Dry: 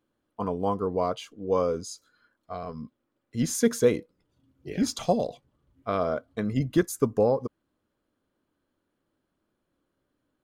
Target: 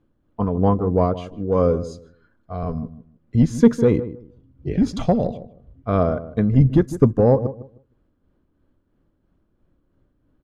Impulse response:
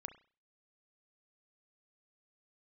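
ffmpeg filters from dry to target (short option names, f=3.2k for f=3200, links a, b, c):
-filter_complex "[0:a]aemphasis=mode=reproduction:type=riaa,acontrast=42,tremolo=f=3:d=0.43,asplit=2[a][b];[b]adelay=155,lowpass=f=970:p=1,volume=-13dB,asplit=2[c][d];[d]adelay=155,lowpass=f=970:p=1,volume=0.22,asplit=2[e][f];[f]adelay=155,lowpass=f=970:p=1,volume=0.22[g];[c][e][g]amix=inputs=3:normalize=0[h];[a][h]amix=inputs=2:normalize=0"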